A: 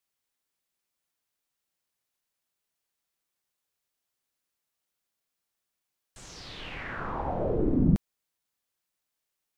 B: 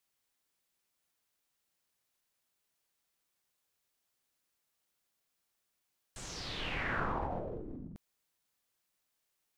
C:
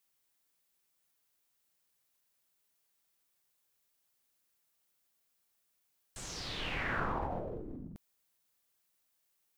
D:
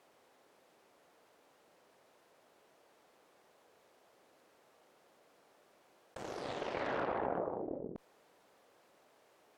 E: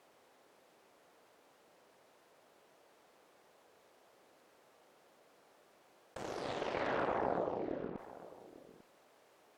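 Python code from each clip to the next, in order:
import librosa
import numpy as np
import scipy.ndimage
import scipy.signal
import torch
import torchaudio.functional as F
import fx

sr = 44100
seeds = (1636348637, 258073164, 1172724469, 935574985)

y1 = fx.over_compress(x, sr, threshold_db=-35.0, ratio=-1.0)
y1 = y1 * 10.0 ** (-4.0 / 20.0)
y2 = fx.high_shelf(y1, sr, hz=10000.0, db=7.0)
y3 = fx.cheby_harmonics(y2, sr, harmonics=(3, 7, 8), levels_db=(-22, -28, -13), full_scale_db=-20.5)
y3 = fx.bandpass_q(y3, sr, hz=520.0, q=1.3)
y3 = fx.env_flatten(y3, sr, amount_pct=50)
y3 = y3 * 10.0 ** (3.5 / 20.0)
y4 = y3 + 10.0 ** (-17.0 / 20.0) * np.pad(y3, (int(847 * sr / 1000.0), 0))[:len(y3)]
y4 = y4 * 10.0 ** (1.0 / 20.0)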